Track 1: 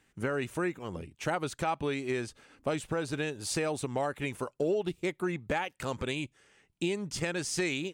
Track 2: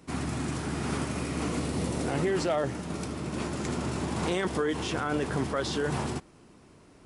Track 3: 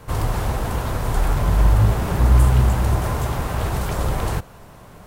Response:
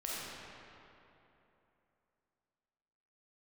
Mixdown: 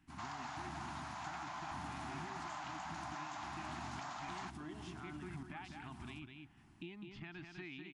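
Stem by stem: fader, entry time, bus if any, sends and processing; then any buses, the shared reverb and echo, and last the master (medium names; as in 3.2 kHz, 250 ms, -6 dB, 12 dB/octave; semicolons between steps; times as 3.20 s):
-7.0 dB, 0.00 s, no send, echo send -7 dB, Chebyshev low-pass 3.2 kHz, order 3
-9.5 dB, 0.00 s, send -16 dB, no echo send, bass shelf 150 Hz +8.5 dB; random-step tremolo, depth 80%
-3.0 dB, 0.10 s, no send, no echo send, Chebyshev band-pass 520–7000 Hz, order 5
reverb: on, RT60 3.1 s, pre-delay 5 ms
echo: delay 202 ms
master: Chebyshev band-stop 320–760 Hz, order 2; compression 2:1, threshold -52 dBFS, peak gain reduction 12.5 dB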